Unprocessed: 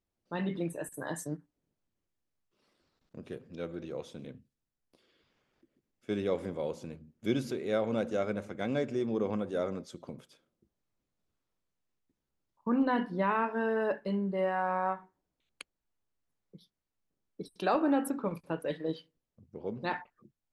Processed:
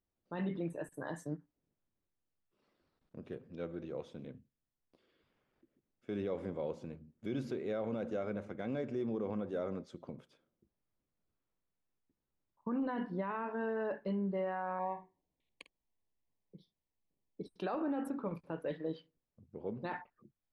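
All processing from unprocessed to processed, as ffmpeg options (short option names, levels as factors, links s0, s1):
-filter_complex "[0:a]asettb=1/sr,asplit=3[s0][s1][s2];[s0]atrim=end=14.794[s3];[s1]atrim=start=14.79:end=17.47,asetpts=PTS-STARTPTS,afade=t=in:d=0.004:c=qsin,afade=t=out:st=2.676:d=0.004:c=qsin,asuperstop=centerf=1400:order=8:qfactor=2.3,asplit=2[s4][s5];[s5]adelay=50,volume=0.224[s6];[s4][s6]amix=inputs=2:normalize=0,atrim=end_sample=118188[s7];[s2]atrim=start=17.466[s8];[s3][s7]acrossfade=d=0.004:c1=hsin:c2=qsin[s9];[s9][s8]acrossfade=d=0.004:c1=qsin:c2=hsin,aemphasis=mode=reproduction:type=75kf,alimiter=level_in=1.26:limit=0.0631:level=0:latency=1:release=36,volume=0.794,volume=0.75"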